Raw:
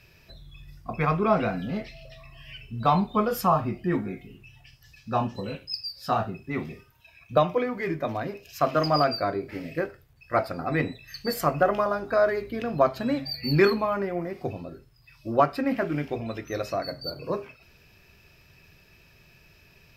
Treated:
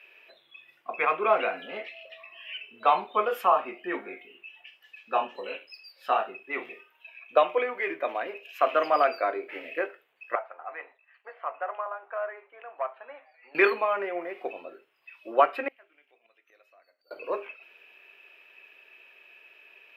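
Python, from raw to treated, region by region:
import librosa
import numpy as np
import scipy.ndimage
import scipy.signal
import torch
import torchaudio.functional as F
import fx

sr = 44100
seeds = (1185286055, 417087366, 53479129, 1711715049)

y = fx.chain(x, sr, fx.leveller(passes=1),
    fx.ladder_bandpass(hz=1100.0, resonance_pct=30),
    fx.air_absorb(metres=250.0), at=(10.35, 13.55))
y = fx.chain(y, sr, fx.highpass(hz=51.0, slope=12),
    fx.tilt_eq(slope=3.0),
    fx.gate_flip(shuts_db=-30.0, range_db=-30), at=(15.68, 17.11))
y = scipy.signal.sosfilt(scipy.signal.butter(4, 400.0, 'highpass', fs=sr, output='sos'), y)
y = fx.high_shelf_res(y, sr, hz=3800.0, db=-10.5, q=3.0)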